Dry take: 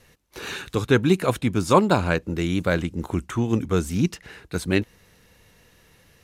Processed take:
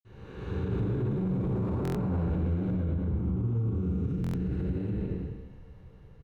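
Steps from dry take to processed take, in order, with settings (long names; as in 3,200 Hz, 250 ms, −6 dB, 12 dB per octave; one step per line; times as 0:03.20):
spectrum smeared in time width 558 ms
convolution reverb RT60 0.45 s, pre-delay 47 ms
downward compressor 3 to 1, threshold −37 dBFS, peak gain reduction 10 dB
low-pass filter 1,300 Hz 6 dB per octave
parametric band 440 Hz +12 dB 0.33 octaves
mains-hum notches 50/100/150/200/250/300/350/400/450 Hz
double-tracking delay 38 ms −11.5 dB
brickwall limiter −35 dBFS, peak gain reduction 9 dB
0:00.71–0:02.81: leveller curve on the samples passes 1
low-shelf EQ 160 Hz +9.5 dB
buffer that repeats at 0:01.83/0:04.22, samples 1,024, times 4
level +7 dB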